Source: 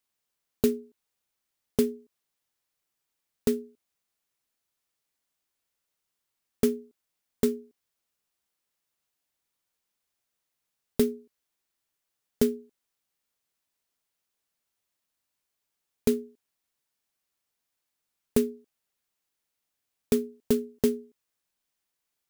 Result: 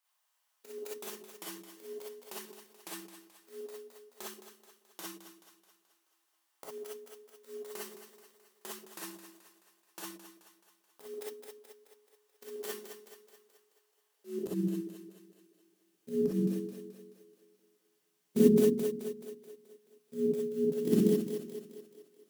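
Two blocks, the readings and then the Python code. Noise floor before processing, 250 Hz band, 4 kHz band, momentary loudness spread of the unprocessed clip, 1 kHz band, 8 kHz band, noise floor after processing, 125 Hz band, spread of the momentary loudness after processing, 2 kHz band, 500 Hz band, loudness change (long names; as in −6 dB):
−83 dBFS, −1.5 dB, −3.5 dB, 11 LU, 0.0 dB, −3.5 dB, −77 dBFS, +3.0 dB, 24 LU, −2.0 dB, −2.0 dB, −5.0 dB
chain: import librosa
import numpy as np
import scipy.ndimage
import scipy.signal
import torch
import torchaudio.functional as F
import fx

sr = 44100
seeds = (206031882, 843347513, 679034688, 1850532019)

p1 = fx.over_compress(x, sr, threshold_db=-24.0, ratio=-0.5)
p2 = x + (p1 * 10.0 ** (-2.0 / 20.0))
p3 = fx.echo_pitch(p2, sr, ms=308, semitones=-2, count=2, db_per_echo=-3.0)
p4 = fx.level_steps(p3, sr, step_db=17)
p5 = fx.filter_sweep_highpass(p4, sr, from_hz=890.0, to_hz=160.0, start_s=14.04, end_s=14.66, q=1.9)
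p6 = p5 + fx.echo_split(p5, sr, split_hz=360.0, low_ms=130, high_ms=215, feedback_pct=52, wet_db=-11.5, dry=0)
p7 = fx.auto_swell(p6, sr, attack_ms=152.0)
y = fx.rev_gated(p7, sr, seeds[0], gate_ms=80, shape='rising', drr_db=-5.5)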